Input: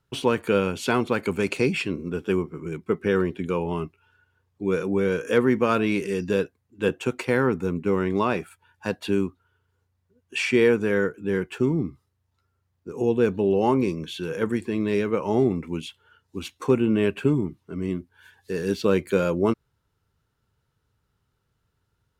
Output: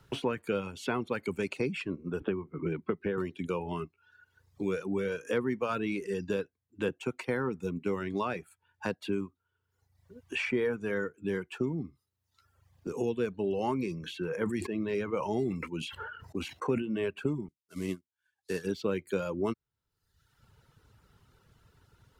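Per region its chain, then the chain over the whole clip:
2.20–3.18 s: distance through air 440 m + three bands compressed up and down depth 100%
13.33–16.82 s: band-stop 3.5 kHz, Q 14 + gate -52 dBFS, range -14 dB + decay stretcher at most 47 dB/s
17.48–18.67 s: CVSD coder 64 kbps + treble shelf 2.3 kHz +11 dB + upward expansion 2.5:1, over -43 dBFS
whole clip: reverb removal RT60 0.88 s; treble shelf 8.2 kHz -3.5 dB; three bands compressed up and down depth 70%; trim -8 dB

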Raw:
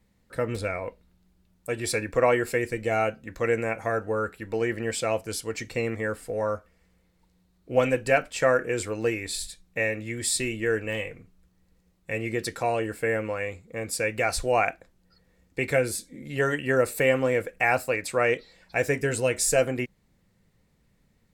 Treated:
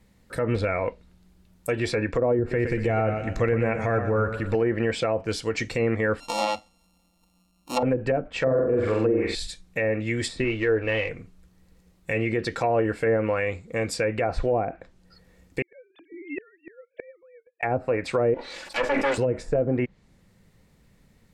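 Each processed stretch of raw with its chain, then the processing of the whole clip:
2.39–4.55 s: bass shelf 190 Hz +10.5 dB + compression 1.5:1, threshold -34 dBFS + modulated delay 120 ms, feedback 45%, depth 60 cents, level -9.5 dB
6.20–7.83 s: sorted samples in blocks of 32 samples + bass shelf 150 Hz -8 dB + static phaser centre 420 Hz, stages 6
8.38–9.35 s: treble shelf 9.5 kHz -5.5 dB + flutter echo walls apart 7.8 m, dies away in 0.65 s
10.44–11.09 s: CVSD coder 64 kbps + low-pass 4.7 kHz + peaking EQ 180 Hz -14.5 dB 0.47 oct
15.62–17.63 s: formants replaced by sine waves + inverted gate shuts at -26 dBFS, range -35 dB
18.34–19.18 s: comb filter that takes the minimum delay 3.5 ms + tone controls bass -13 dB, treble +4 dB + decay stretcher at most 35 dB/s
whole clip: low-pass that closes with the level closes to 460 Hz, closed at -19 dBFS; peak limiter -21 dBFS; trim +7 dB

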